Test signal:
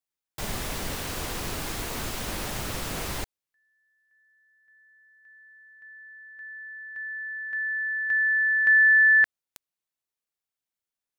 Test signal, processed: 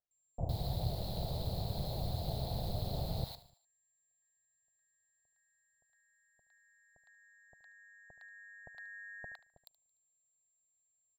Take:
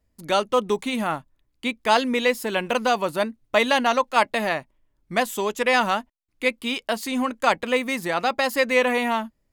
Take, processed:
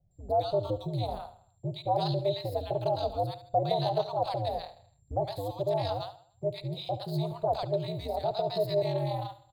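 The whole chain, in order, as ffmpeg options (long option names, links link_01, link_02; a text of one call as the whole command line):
ffmpeg -i in.wav -filter_complex "[0:a]asplit=2[link_01][link_02];[link_02]aecho=0:1:74|148|222|296:0.178|0.0765|0.0329|0.0141[link_03];[link_01][link_03]amix=inputs=2:normalize=0,aeval=exprs='val(0)+0.00178*sin(2*PI*7400*n/s)':channel_layout=same,highshelf=frequency=9700:gain=-8,acrossover=split=940[link_04][link_05];[link_05]adelay=110[link_06];[link_04][link_06]amix=inputs=2:normalize=0,aeval=exprs='val(0)*sin(2*PI*100*n/s)':channel_layout=same,asplit=2[link_07][link_08];[link_08]acompressor=threshold=-40dB:ratio=6:release=299:detection=rms,volume=-3dB[link_09];[link_07][link_09]amix=inputs=2:normalize=0,firequalizer=gain_entry='entry(140,0);entry(270,-14);entry(690,2);entry(1100,-19);entry(1600,-28);entry(2800,-24);entry(4100,0);entry(5800,-24);entry(15000,-4)':delay=0.05:min_phase=1" out.wav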